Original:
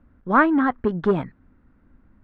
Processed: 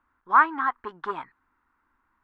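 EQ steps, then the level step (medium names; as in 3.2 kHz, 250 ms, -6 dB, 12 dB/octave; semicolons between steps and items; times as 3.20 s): resonant low shelf 270 Hz -10 dB, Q 1.5; resonant low shelf 750 Hz -9.5 dB, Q 3; -4.5 dB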